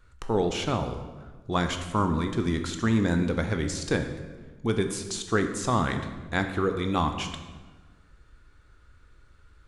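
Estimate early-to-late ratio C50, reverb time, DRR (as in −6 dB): 8.0 dB, 1.3 s, 6.0 dB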